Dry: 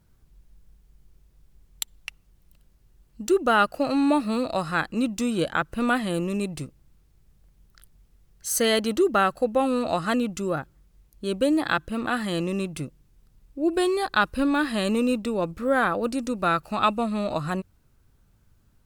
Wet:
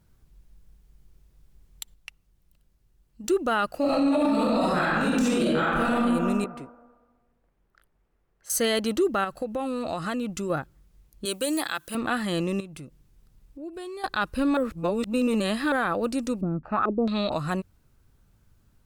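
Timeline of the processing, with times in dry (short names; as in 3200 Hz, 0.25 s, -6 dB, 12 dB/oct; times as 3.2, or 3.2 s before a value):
1.94–3.24 gain -6 dB
3.79–5.9 reverb throw, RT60 1.4 s, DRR -11.5 dB
6.44–8.5 three-band isolator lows -14 dB, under 300 Hz, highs -17 dB, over 2200 Hz
9.24–10.5 compressor 4:1, threshold -26 dBFS
11.25–11.95 RIAA curve recording
12.6–14.04 compressor 2.5:1, threshold -42 dBFS
14.57–15.72 reverse
16.41–17.32 stepped low-pass 4.5 Hz 250–6100 Hz
whole clip: limiter -16 dBFS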